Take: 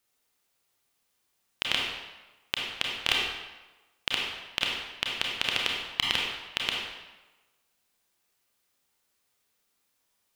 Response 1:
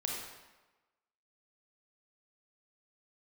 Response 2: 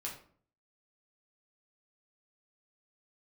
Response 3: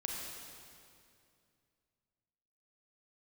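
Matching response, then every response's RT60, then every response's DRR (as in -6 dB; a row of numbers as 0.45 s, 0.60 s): 1; 1.2 s, 0.50 s, 2.4 s; -2.0 dB, -3.5 dB, -1.5 dB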